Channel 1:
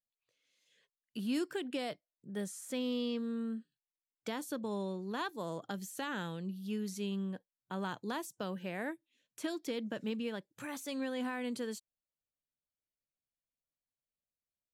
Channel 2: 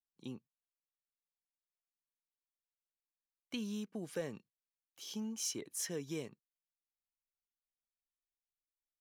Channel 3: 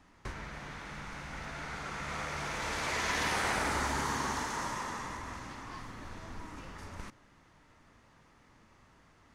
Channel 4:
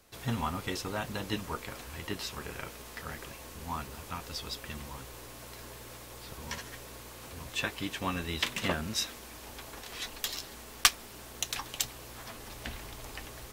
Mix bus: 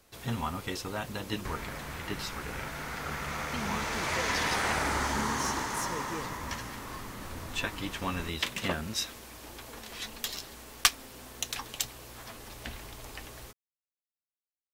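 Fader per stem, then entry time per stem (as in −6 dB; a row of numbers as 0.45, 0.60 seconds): −19.0, +0.5, +2.0, −0.5 decibels; 0.00, 0.00, 1.20, 0.00 seconds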